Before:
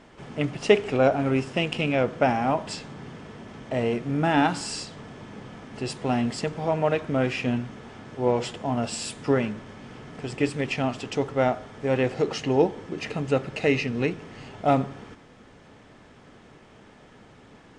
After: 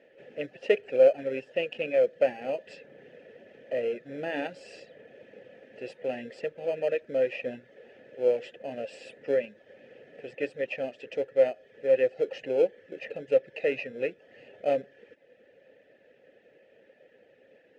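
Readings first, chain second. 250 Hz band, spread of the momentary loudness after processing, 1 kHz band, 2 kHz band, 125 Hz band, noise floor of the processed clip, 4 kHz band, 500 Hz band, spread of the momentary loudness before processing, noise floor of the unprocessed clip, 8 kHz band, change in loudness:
-14.5 dB, 17 LU, -15.0 dB, -7.0 dB, -22.5 dB, -61 dBFS, -11.5 dB, -0.5 dB, 19 LU, -52 dBFS, under -20 dB, -3.5 dB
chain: reverb removal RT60 0.52 s; in parallel at -9 dB: sample-and-hold 24×; on the sum: vowel filter e; trim +3.5 dB

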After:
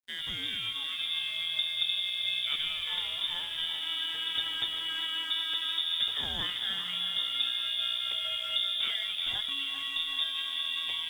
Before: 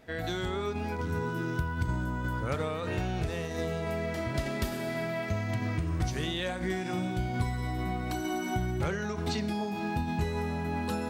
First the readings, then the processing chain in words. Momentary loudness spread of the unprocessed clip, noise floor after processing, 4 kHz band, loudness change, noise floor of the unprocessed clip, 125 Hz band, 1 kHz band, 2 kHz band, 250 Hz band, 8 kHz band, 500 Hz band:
2 LU, -37 dBFS, +17.0 dB, +3.0 dB, -35 dBFS, -25.0 dB, -11.0 dB, -0.5 dB, -22.5 dB, -5.5 dB, -21.5 dB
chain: frequency inversion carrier 3.6 kHz; thinning echo 388 ms, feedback 67%, high-pass 450 Hz, level -8.5 dB; crossover distortion -48.5 dBFS; trim -2 dB

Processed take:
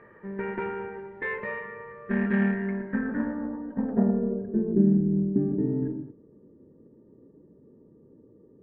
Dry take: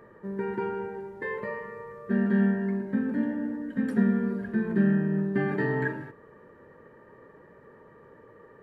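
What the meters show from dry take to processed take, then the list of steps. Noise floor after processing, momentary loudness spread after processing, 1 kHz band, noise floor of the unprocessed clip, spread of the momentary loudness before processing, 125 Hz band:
-56 dBFS, 14 LU, -1.0 dB, -54 dBFS, 14 LU, +0.5 dB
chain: Chebyshev shaper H 3 -24 dB, 8 -29 dB, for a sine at -12.5 dBFS; low-pass sweep 2.3 kHz -> 290 Hz, 2.70–4.99 s

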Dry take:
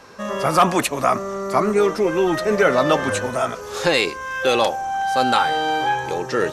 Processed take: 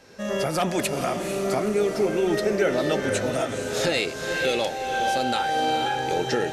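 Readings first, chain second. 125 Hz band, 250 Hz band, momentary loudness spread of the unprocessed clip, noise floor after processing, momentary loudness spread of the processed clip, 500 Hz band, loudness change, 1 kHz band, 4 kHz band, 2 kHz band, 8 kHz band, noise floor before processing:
-2.5 dB, -3.5 dB, 7 LU, -33 dBFS, 4 LU, -4.0 dB, -5.0 dB, -6.5 dB, -3.5 dB, -5.0 dB, -2.0 dB, -33 dBFS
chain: recorder AGC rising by 20 dB/s; peaking EQ 1.1 kHz -13.5 dB 0.57 oct; echo that smears into a reverb 473 ms, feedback 43%, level -6 dB; trim -5.5 dB

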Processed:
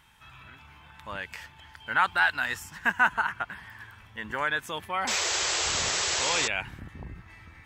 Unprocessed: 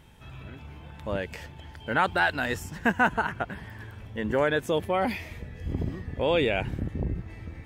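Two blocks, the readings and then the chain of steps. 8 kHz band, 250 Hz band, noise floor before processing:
+19.5 dB, -12.0 dB, -46 dBFS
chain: resonant low shelf 750 Hz -11.5 dB, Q 1.5; painted sound noise, 5.07–6.48 s, 330–8000 Hz -28 dBFS

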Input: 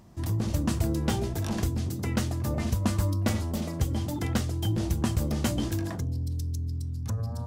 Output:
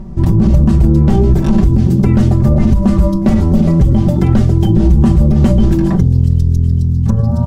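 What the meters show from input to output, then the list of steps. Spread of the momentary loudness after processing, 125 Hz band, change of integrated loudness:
3 LU, +18.0 dB, +18.0 dB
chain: tilt EQ -4 dB/octave; comb 5.2 ms, depth 96%; on a send: feedback echo behind a high-pass 397 ms, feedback 69%, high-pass 3.4 kHz, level -16.5 dB; on the sum: loudness maximiser +12.5 dB; trim -1 dB

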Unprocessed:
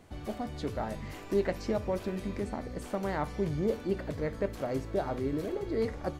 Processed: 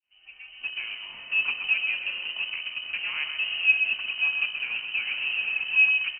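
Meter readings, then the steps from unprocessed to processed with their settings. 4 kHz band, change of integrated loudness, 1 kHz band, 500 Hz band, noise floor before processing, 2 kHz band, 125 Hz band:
+21.0 dB, +9.0 dB, -8.5 dB, under -25 dB, -44 dBFS, +22.5 dB, under -25 dB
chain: fade-in on the opening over 1.14 s; peaking EQ 450 Hz +14.5 dB 0.22 oct; in parallel at -12 dB: Schmitt trigger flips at -30.5 dBFS; on the sum: frequency inversion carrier 3 kHz; on a send: delay 128 ms -7 dB; on the sum: spring tank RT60 3.7 s, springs 30/58 ms, chirp 45 ms, DRR 11 dB; trim -3 dB

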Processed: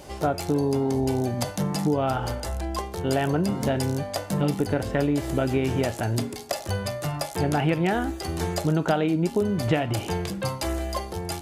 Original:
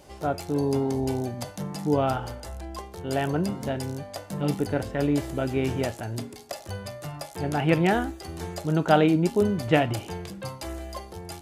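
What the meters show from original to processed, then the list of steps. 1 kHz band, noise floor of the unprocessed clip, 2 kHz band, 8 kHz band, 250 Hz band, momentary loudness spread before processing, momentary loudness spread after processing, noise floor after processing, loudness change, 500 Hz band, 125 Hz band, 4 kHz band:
+0.5 dB, -45 dBFS, 0.0 dB, +5.5 dB, +1.0 dB, 15 LU, 6 LU, -38 dBFS, +1.0 dB, +0.5 dB, +2.5 dB, +3.0 dB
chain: compression 8:1, threshold -27 dBFS, peak gain reduction 14 dB; trim +7.5 dB

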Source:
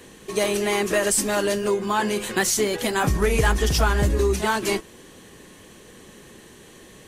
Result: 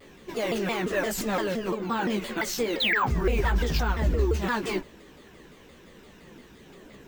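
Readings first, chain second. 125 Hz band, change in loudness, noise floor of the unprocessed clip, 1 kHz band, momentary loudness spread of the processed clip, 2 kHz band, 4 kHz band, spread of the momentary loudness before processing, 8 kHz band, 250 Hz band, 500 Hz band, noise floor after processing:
-4.0 dB, -5.0 dB, -48 dBFS, -4.5 dB, 6 LU, -3.5 dB, -4.0 dB, 4 LU, -13.5 dB, -3.0 dB, -6.5 dB, -52 dBFS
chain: painted sound fall, 2.80–3.06 s, 830–4000 Hz -14 dBFS; peaking EQ 11 kHz -13 dB 1.3 oct; peak limiter -15 dBFS, peak gain reduction 8.5 dB; chorus voices 6, 1.2 Hz, delay 16 ms, depth 3 ms; hum notches 60/120 Hz; careless resampling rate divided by 2×, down filtered, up hold; vibrato with a chosen wave saw down 5.8 Hz, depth 250 cents

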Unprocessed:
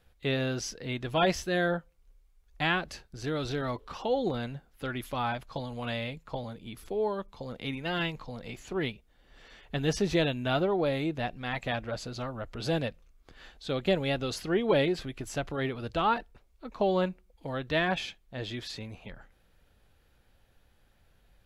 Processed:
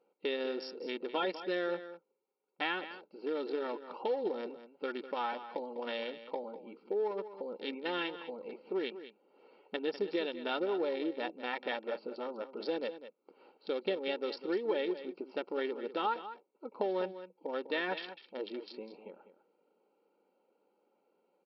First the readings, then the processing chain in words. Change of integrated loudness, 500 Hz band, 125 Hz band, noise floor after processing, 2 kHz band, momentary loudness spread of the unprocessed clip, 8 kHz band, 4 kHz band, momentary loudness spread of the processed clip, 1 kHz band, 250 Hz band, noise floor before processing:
-5.5 dB, -4.0 dB, under -25 dB, -77 dBFS, -7.0 dB, 12 LU, under -30 dB, -6.5 dB, 12 LU, -5.5 dB, -7.5 dB, -65 dBFS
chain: local Wiener filter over 25 samples; comb 2.2 ms, depth 60%; compression 4:1, threshold -31 dBFS, peak gain reduction 11.5 dB; brick-wall FIR band-pass 190–5600 Hz; delay 200 ms -12.5 dB

